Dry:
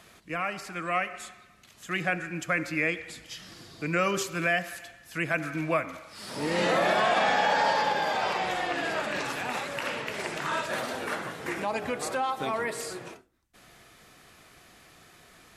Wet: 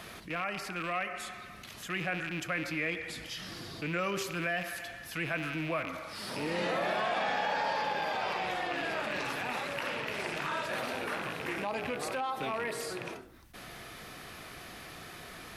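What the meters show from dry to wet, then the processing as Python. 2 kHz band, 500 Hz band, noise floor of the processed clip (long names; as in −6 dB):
−4.5 dB, −5.5 dB, −48 dBFS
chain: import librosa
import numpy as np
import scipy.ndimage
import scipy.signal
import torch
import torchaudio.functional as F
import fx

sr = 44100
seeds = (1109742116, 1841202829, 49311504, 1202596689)

y = fx.rattle_buzz(x, sr, strikes_db=-43.0, level_db=-26.0)
y = fx.peak_eq(y, sr, hz=7400.0, db=-6.5, octaves=0.56)
y = fx.env_flatten(y, sr, amount_pct=50)
y = F.gain(torch.from_numpy(y), -8.0).numpy()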